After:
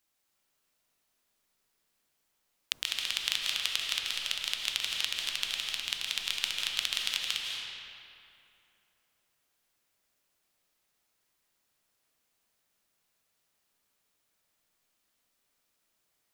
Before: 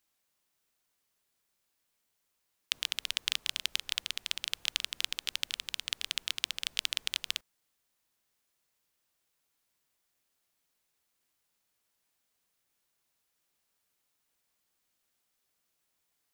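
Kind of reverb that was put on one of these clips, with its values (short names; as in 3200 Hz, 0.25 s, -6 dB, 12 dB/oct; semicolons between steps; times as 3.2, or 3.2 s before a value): digital reverb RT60 2.8 s, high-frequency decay 0.65×, pre-delay 0.12 s, DRR -1 dB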